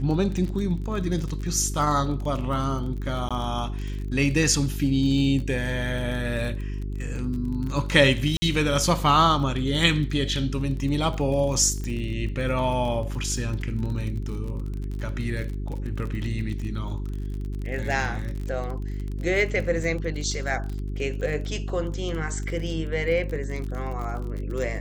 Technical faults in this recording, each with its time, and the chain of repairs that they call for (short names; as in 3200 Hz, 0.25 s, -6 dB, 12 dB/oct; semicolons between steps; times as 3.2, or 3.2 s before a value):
crackle 35/s -31 dBFS
hum 50 Hz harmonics 8 -30 dBFS
3.29–3.31 gap 16 ms
8.37–8.42 gap 50 ms
11.84 pop -20 dBFS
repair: de-click; de-hum 50 Hz, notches 8; interpolate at 3.29, 16 ms; interpolate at 8.37, 50 ms